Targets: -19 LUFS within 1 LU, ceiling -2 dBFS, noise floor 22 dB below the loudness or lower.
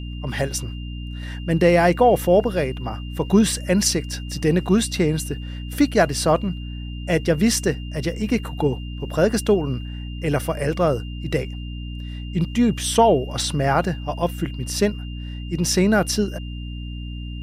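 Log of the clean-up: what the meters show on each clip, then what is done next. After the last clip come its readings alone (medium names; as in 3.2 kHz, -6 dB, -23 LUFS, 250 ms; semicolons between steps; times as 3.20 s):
hum 60 Hz; highest harmonic 300 Hz; hum level -29 dBFS; steady tone 2.8 kHz; tone level -42 dBFS; loudness -21.0 LUFS; peak level -4.5 dBFS; loudness target -19.0 LUFS
-> de-hum 60 Hz, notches 5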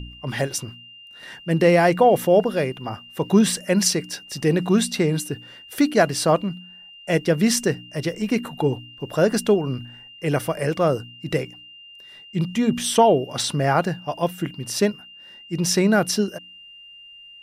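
hum not found; steady tone 2.8 kHz; tone level -42 dBFS
-> band-stop 2.8 kHz, Q 30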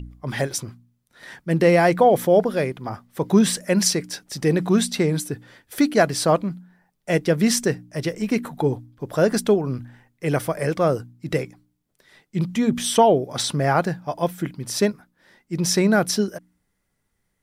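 steady tone not found; loudness -21.5 LUFS; peak level -5.0 dBFS; loudness target -19.0 LUFS
-> trim +2.5 dB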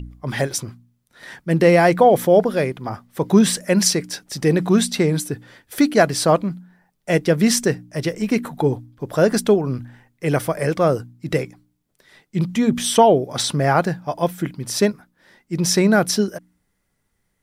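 loudness -19.0 LUFS; peak level -2.5 dBFS; noise floor -71 dBFS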